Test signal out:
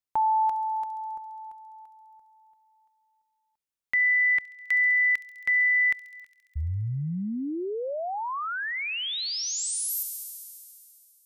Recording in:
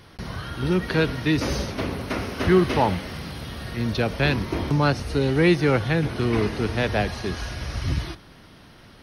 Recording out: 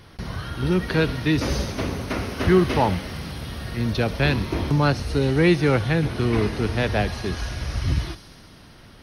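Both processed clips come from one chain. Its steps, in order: low shelf 110 Hz +4.5 dB; thin delay 68 ms, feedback 83%, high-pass 5300 Hz, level -8 dB

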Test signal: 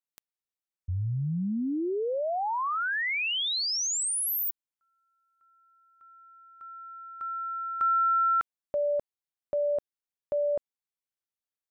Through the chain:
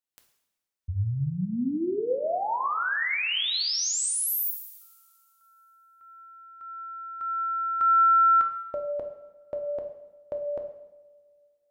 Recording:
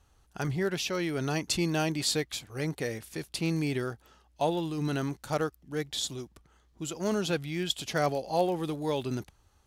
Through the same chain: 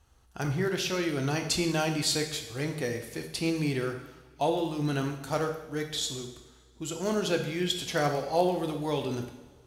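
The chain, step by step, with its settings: two-slope reverb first 0.87 s, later 2.5 s, from -19 dB, DRR 3.5 dB

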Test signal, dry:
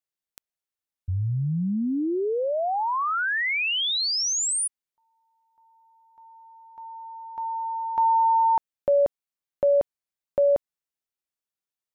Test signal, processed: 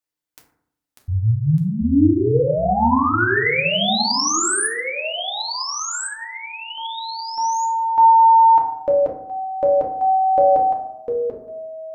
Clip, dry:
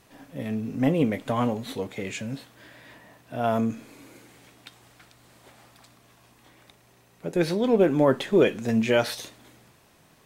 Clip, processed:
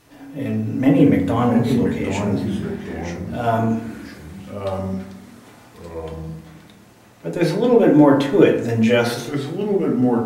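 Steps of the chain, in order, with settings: FDN reverb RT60 0.7 s, low-frequency decay 1.25×, high-frequency decay 0.4×, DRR -1 dB; echoes that change speed 0.523 s, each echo -3 st, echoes 2, each echo -6 dB; gain +2 dB

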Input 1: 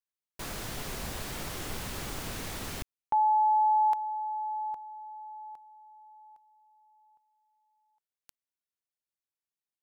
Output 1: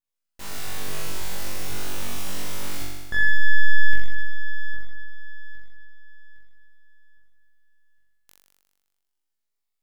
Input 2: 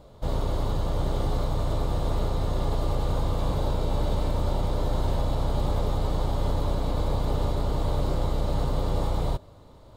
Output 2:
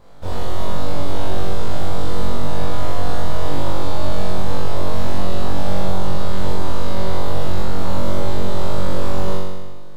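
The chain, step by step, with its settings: full-wave rectifier; flutter echo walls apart 3.6 m, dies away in 1.3 s

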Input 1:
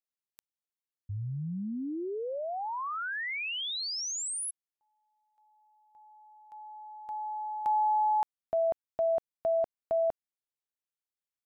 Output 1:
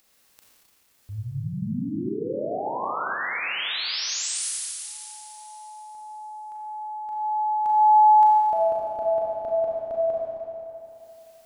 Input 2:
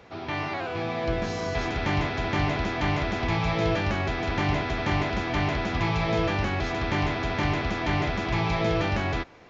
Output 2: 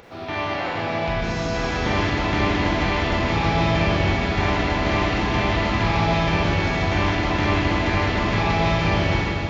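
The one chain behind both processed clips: upward compressor, threshold -44 dBFS; Schroeder reverb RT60 3 s, combs from 29 ms, DRR -5 dB

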